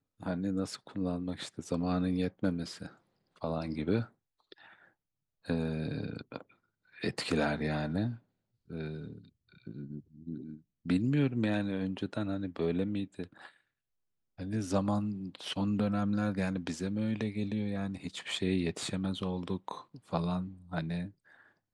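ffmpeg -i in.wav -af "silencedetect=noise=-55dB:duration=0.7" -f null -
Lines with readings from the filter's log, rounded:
silence_start: 13.56
silence_end: 14.38 | silence_duration: 0.82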